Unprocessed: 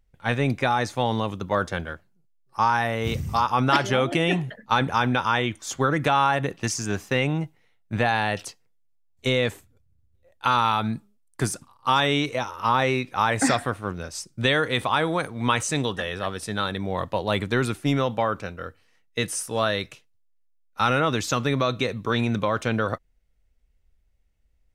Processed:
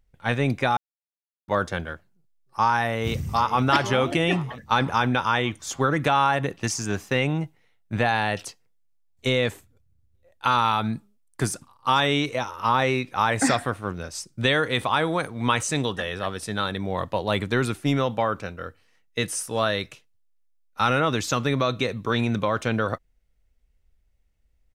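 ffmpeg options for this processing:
-filter_complex "[0:a]asplit=2[a][b];[b]afade=t=in:st=2.89:d=0.01,afade=t=out:st=3.62:d=0.01,aecho=0:1:480|960|1440|1920|2400|2880|3360:0.177828|0.115588|0.0751323|0.048836|0.0317434|0.0206332|0.0134116[c];[a][c]amix=inputs=2:normalize=0,asplit=3[d][e][f];[d]atrim=end=0.77,asetpts=PTS-STARTPTS,afade=t=out:st=0.766:d=0.004:c=hsin[g];[e]atrim=start=0.77:end=1.48,asetpts=PTS-STARTPTS,volume=0[h];[f]atrim=start=1.48,asetpts=PTS-STARTPTS,afade=t=in:d=0.004:c=hsin[i];[g][h][i]concat=n=3:v=0:a=1"

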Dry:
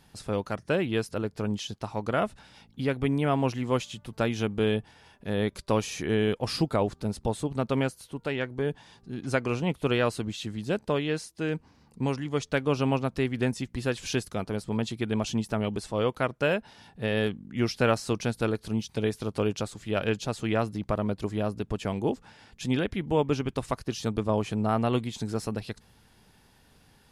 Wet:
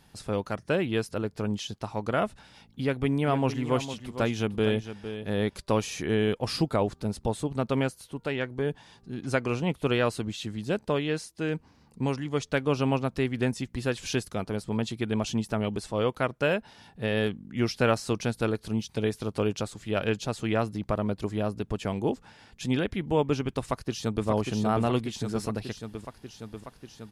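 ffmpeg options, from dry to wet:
-filter_complex "[0:a]asplit=3[a][b][c];[a]afade=t=out:st=3.05:d=0.02[d];[b]aecho=1:1:457:0.282,afade=t=in:st=3.05:d=0.02,afade=t=out:st=5.61:d=0.02[e];[c]afade=t=in:st=5.61:d=0.02[f];[d][e][f]amix=inputs=3:normalize=0,asplit=2[g][h];[h]afade=t=in:st=23.6:d=0.01,afade=t=out:st=24.27:d=0.01,aecho=0:1:590|1180|1770|2360|2950|3540|4130|4720|5310|5900|6490|7080:0.595662|0.446747|0.33506|0.251295|0.188471|0.141353|0.106015|0.0795113|0.0596335|0.0447251|0.0335438|0.0251579[i];[g][i]amix=inputs=2:normalize=0"

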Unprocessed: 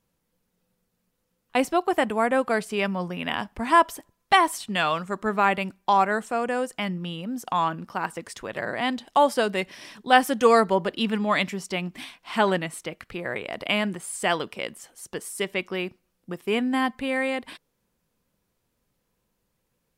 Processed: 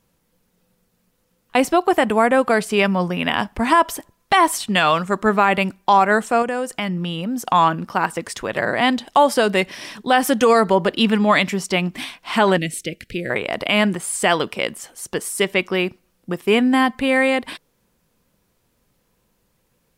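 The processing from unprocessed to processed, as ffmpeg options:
-filter_complex "[0:a]asettb=1/sr,asplit=3[a][b][c];[a]atrim=end=6.424[d];[b]atrim=start=6.42:end=7.46,asetpts=PTS-STARTPTS,afade=t=in:d=0.004:c=qsin,afade=t=out:st=1.036:d=0.004:c=qsin,acompressor=threshold=-30dB:ratio=2.5:attack=3.2:release=140:knee=1:detection=peak[e];[c]atrim=start=7.456[f];[d][e]acrossfade=d=0.004:c1=hsin:c2=qsin[g];[g][f]acrossfade=d=0.004:c1=qsin:c2=hsin,asettb=1/sr,asplit=3[h][i][j];[h]atrim=end=12.584[k];[i]atrim=start=12.58:end=13.3,asetpts=PTS-STARTPTS,afade=t=in:d=0.004:c=qsin,afade=t=out:st=0.716:d=0.004:c=qsin,asuperstop=centerf=1000:order=4:qfactor=0.58[l];[j]atrim=start=13.296[m];[k][l]acrossfade=d=0.004:c1=hsin:c2=qsin[n];[n][m]acrossfade=d=0.004:c1=qsin:c2=hsin,alimiter=limit=-14dB:level=0:latency=1:release=88,volume=9dB"

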